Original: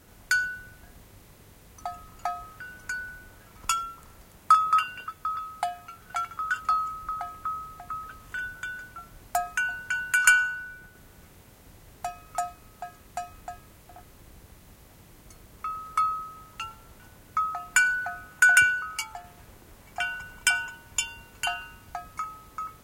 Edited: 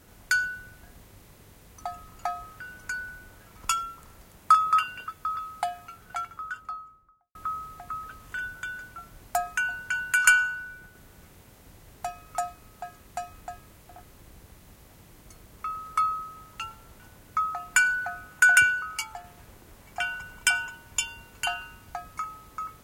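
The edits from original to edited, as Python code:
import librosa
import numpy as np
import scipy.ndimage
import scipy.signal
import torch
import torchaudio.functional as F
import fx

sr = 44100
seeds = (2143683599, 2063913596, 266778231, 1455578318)

y = fx.studio_fade_out(x, sr, start_s=5.8, length_s=1.55)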